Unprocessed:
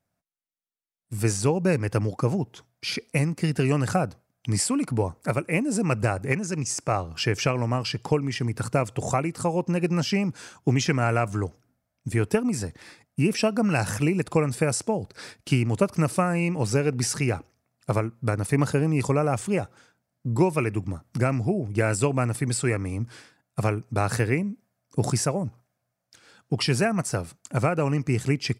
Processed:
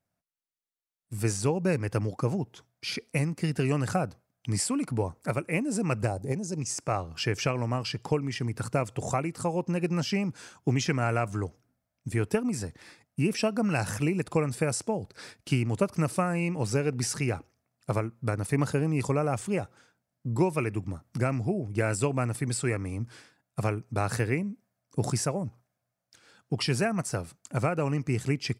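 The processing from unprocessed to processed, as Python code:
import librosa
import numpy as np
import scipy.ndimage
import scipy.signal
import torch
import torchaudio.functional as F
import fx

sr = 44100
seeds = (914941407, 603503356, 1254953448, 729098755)

y = fx.band_shelf(x, sr, hz=1800.0, db=-13.5, octaves=1.7, at=(6.06, 6.59), fade=0.02)
y = y * 10.0 ** (-4.0 / 20.0)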